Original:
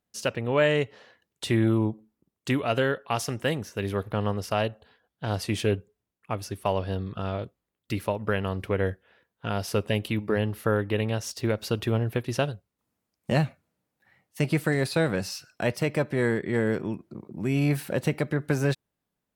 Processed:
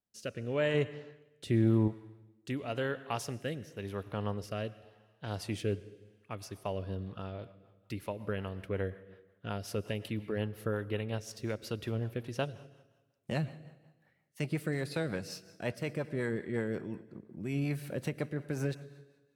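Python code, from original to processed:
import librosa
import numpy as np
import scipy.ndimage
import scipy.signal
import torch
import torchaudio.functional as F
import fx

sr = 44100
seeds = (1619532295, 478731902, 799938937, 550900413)

y = fx.rev_plate(x, sr, seeds[0], rt60_s=1.3, hf_ratio=0.9, predelay_ms=85, drr_db=16.0)
y = fx.rotary_switch(y, sr, hz=0.9, then_hz=5.5, switch_at_s=6.8)
y = fx.low_shelf(y, sr, hz=490.0, db=6.0, at=(0.74, 1.88))
y = y * 10.0 ** (-7.5 / 20.0)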